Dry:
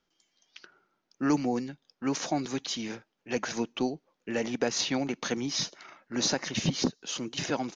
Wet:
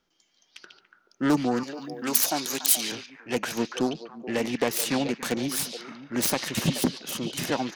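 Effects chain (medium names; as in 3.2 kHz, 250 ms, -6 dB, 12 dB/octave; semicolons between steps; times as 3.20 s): self-modulated delay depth 0.22 ms; 1.63–2.92 s: RIAA curve recording; repeats whose band climbs or falls 143 ms, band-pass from 3.6 kHz, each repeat -1.4 oct, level -3.5 dB; trim +3.5 dB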